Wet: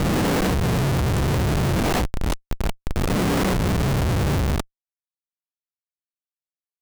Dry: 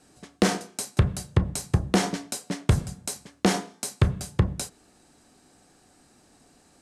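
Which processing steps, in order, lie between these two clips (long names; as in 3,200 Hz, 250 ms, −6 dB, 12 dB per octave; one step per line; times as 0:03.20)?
peak hold with a rise ahead of every peak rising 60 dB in 2.84 s
0:01.80–0:03.10: high-pass filter 830 Hz 12 dB per octave
comparator with hysteresis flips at −19 dBFS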